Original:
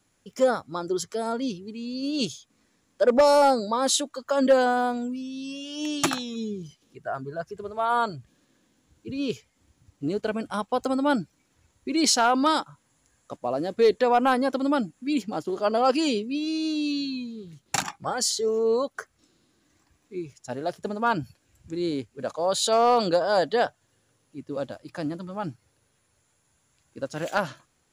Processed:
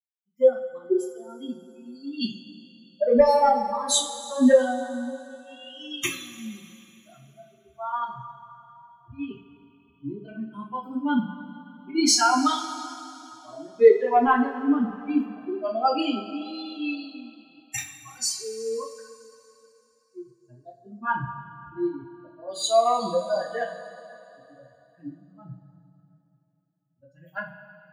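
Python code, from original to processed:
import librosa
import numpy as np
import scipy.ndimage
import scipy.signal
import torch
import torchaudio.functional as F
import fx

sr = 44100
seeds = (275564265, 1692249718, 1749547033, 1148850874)

y = fx.bin_expand(x, sr, power=3.0)
y = fx.rev_double_slope(y, sr, seeds[0], early_s=0.3, late_s=3.0, knee_db=-18, drr_db=-6.0)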